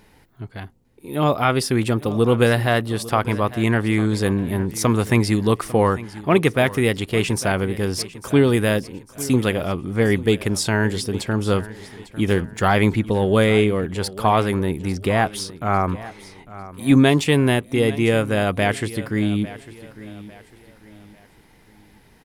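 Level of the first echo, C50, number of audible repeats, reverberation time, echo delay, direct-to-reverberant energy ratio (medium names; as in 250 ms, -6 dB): -17.0 dB, no reverb, 3, no reverb, 850 ms, no reverb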